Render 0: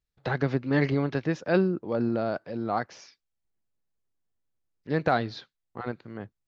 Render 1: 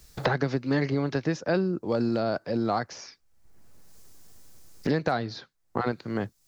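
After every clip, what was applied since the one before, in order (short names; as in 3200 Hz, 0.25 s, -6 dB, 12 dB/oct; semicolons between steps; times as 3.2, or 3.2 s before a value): resonant high shelf 4100 Hz +6 dB, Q 1.5; three-band squash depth 100%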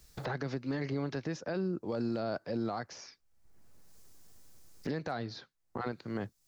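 limiter -19.5 dBFS, peak gain reduction 9 dB; gain -6 dB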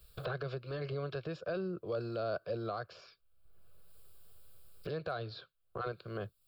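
fixed phaser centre 1300 Hz, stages 8; gain +1.5 dB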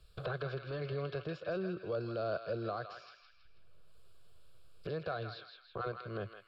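air absorption 65 m; narrowing echo 0.162 s, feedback 54%, band-pass 2700 Hz, level -4 dB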